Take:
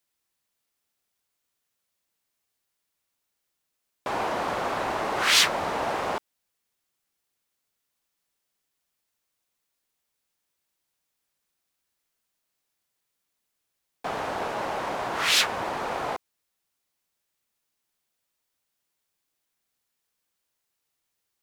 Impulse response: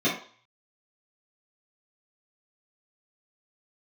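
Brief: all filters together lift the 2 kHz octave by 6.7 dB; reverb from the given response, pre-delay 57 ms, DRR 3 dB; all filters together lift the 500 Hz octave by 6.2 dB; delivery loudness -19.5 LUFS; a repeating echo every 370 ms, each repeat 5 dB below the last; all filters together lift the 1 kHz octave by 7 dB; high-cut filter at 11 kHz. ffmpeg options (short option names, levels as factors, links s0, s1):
-filter_complex "[0:a]lowpass=11000,equalizer=f=500:t=o:g=5.5,equalizer=f=1000:t=o:g=5.5,equalizer=f=2000:t=o:g=6.5,aecho=1:1:370|740|1110|1480|1850|2220|2590:0.562|0.315|0.176|0.0988|0.0553|0.031|0.0173,asplit=2[s0][s1];[1:a]atrim=start_sample=2205,adelay=57[s2];[s1][s2]afir=irnorm=-1:irlink=0,volume=0.15[s3];[s0][s3]amix=inputs=2:normalize=0,volume=0.891"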